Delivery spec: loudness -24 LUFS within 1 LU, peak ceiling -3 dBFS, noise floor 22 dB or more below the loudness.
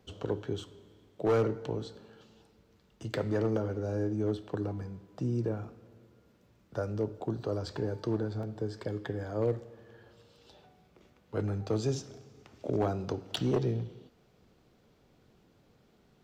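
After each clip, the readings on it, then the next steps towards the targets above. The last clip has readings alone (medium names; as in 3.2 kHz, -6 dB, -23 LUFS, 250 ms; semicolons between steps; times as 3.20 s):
clipped samples 0.5%; clipping level -21.5 dBFS; dropouts 2; longest dropout 2.4 ms; loudness -34.0 LUFS; peak level -21.5 dBFS; loudness target -24.0 LUFS
-> clip repair -21.5 dBFS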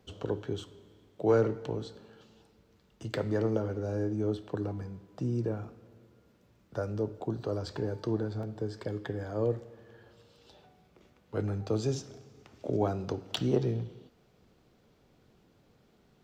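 clipped samples 0.0%; dropouts 2; longest dropout 2.4 ms
-> interpolate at 7.68/8.43 s, 2.4 ms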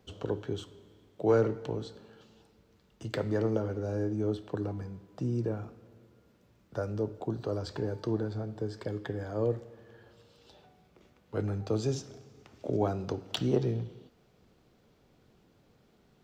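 dropouts 0; loudness -33.5 LUFS; peak level -13.0 dBFS; loudness target -24.0 LUFS
-> trim +9.5 dB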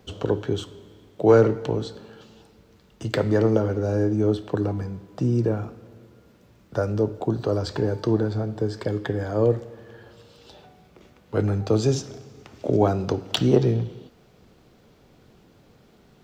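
loudness -24.0 LUFS; peak level -3.5 dBFS; noise floor -56 dBFS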